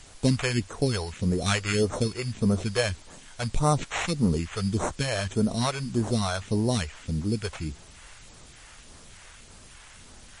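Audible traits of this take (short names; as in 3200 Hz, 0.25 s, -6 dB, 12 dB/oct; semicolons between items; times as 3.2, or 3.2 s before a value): aliases and images of a low sample rate 4800 Hz, jitter 0%; phasing stages 2, 1.7 Hz, lowest notch 220–2900 Hz; a quantiser's noise floor 8-bit, dither triangular; MP3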